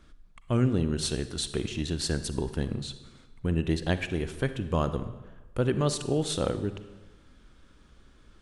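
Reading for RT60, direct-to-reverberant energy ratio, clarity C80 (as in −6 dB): 1.2 s, 11.0 dB, 14.0 dB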